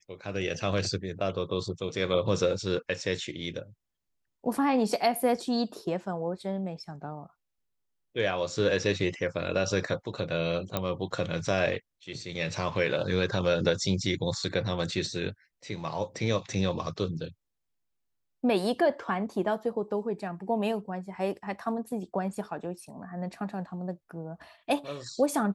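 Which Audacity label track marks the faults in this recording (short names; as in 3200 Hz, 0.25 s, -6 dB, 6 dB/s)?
10.770000	10.770000	pop -13 dBFS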